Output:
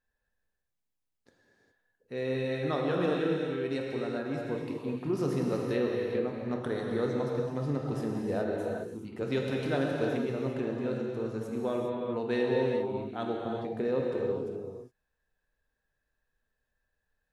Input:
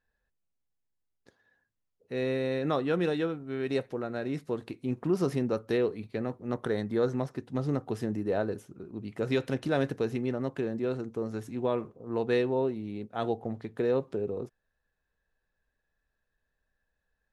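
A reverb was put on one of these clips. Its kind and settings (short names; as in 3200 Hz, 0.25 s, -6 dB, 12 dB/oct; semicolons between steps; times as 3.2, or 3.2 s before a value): non-linear reverb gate 0.44 s flat, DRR -1.5 dB; gain -4 dB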